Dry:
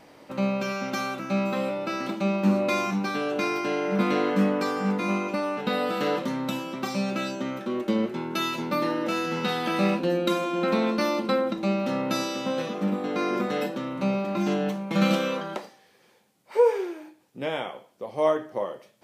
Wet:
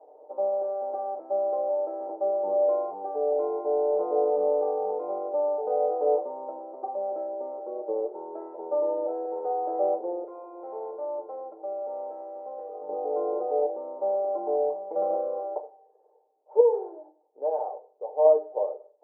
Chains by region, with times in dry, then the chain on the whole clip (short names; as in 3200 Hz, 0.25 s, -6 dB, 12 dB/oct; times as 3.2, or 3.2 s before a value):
10.24–12.89 pre-emphasis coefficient 0.9 + sample leveller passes 3
16.6–18.25 dynamic EQ 1100 Hz, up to +6 dB, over -37 dBFS, Q 0.86 + compressor 1.5:1, threshold -29 dBFS + notches 50/100/150/200/250/300/350/400/450/500 Hz
whole clip: elliptic band-pass 400–840 Hz, stop band 70 dB; comb 6.6 ms, depth 57%; gain +2 dB